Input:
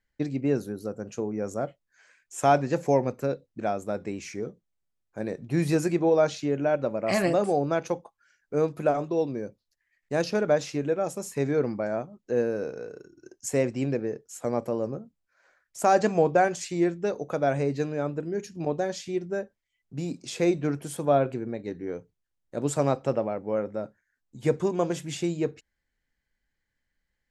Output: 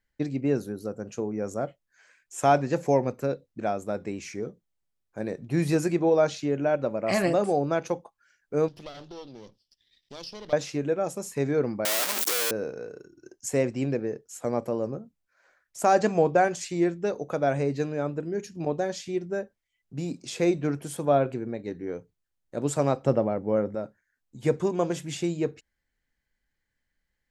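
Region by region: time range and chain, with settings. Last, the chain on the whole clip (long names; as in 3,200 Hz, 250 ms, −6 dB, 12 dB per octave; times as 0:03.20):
0:08.68–0:10.53: lower of the sound and its delayed copy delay 0.39 ms + flat-topped bell 4,200 Hz +15.5 dB 1.2 octaves + downward compressor 2 to 1, threshold −51 dBFS
0:11.85–0:12.51: sign of each sample alone + high-pass filter 250 Hz 24 dB per octave + spectral tilt +4 dB per octave
0:23.05–0:23.75: low-shelf EQ 400 Hz +7 dB + notch filter 2,500 Hz, Q 9.6
whole clip: no processing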